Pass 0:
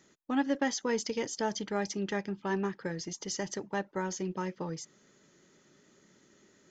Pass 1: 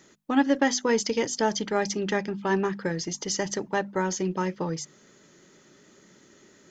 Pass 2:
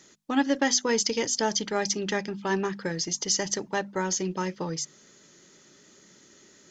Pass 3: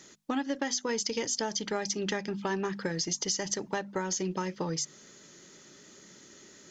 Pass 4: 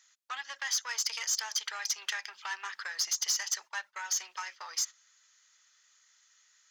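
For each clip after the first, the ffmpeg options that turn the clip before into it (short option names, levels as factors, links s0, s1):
-af "bandreject=f=50:t=h:w=6,bandreject=f=100:t=h:w=6,bandreject=f=150:t=h:w=6,bandreject=f=200:t=h:w=6,bandreject=f=250:t=h:w=6,volume=2.37"
-af "equalizer=f=5600:t=o:w=1.9:g=7.5,volume=0.75"
-af "acompressor=threshold=0.0316:ratio=6,volume=1.26"
-af "aeval=exprs='(tanh(20*val(0)+0.3)-tanh(0.3))/20':c=same,agate=range=0.2:threshold=0.00891:ratio=16:detection=peak,highpass=f=1100:w=0.5412,highpass=f=1100:w=1.3066,volume=1.68"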